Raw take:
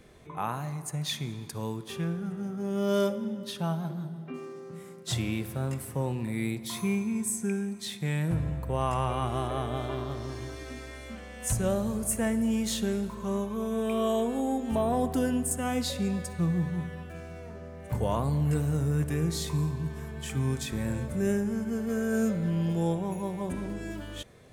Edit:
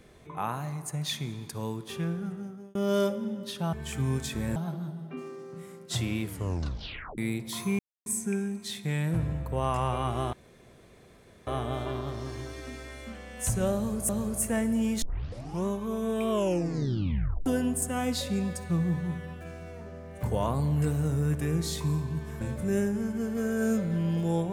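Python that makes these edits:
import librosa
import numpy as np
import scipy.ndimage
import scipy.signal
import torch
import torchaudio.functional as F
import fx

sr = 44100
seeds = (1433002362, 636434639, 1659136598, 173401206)

y = fx.edit(x, sr, fx.fade_out_span(start_s=2.25, length_s=0.5),
    fx.tape_stop(start_s=5.39, length_s=0.96),
    fx.silence(start_s=6.96, length_s=0.27),
    fx.insert_room_tone(at_s=9.5, length_s=1.14),
    fx.repeat(start_s=11.78, length_s=0.34, count=2),
    fx.tape_start(start_s=12.71, length_s=0.63),
    fx.tape_stop(start_s=13.99, length_s=1.16),
    fx.move(start_s=20.1, length_s=0.83, to_s=3.73), tone=tone)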